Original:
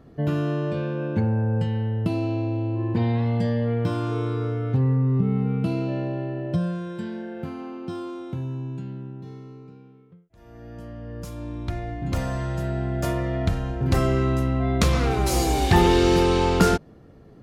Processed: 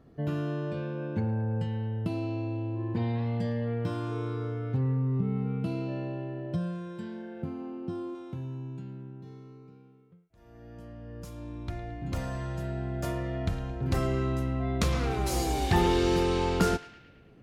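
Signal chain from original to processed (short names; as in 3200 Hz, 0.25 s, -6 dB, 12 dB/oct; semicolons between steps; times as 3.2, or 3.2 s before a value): 7.42–8.15 tilt shelf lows +5.5 dB, about 860 Hz; narrowing echo 0.11 s, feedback 64%, band-pass 2300 Hz, level -14 dB; gain -7 dB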